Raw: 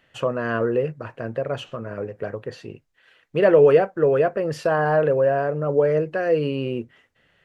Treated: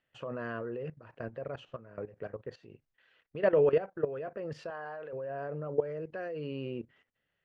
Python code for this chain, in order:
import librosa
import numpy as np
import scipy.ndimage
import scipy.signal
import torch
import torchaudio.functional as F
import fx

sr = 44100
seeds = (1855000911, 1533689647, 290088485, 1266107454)

y = scipy.signal.sosfilt(scipy.signal.butter(2, 5100.0, 'lowpass', fs=sr, output='sos'), x)
y = fx.level_steps(y, sr, step_db=15)
y = fx.highpass(y, sr, hz=740.0, slope=6, at=(4.7, 5.13))
y = y * 10.0 ** (-7.5 / 20.0)